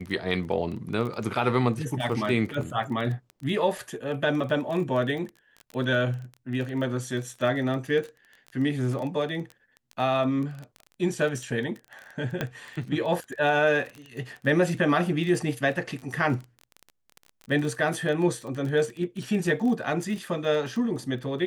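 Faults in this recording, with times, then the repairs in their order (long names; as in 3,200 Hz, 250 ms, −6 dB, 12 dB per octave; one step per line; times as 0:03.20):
surface crackle 20 per second −32 dBFS
0:12.41: click −14 dBFS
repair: click removal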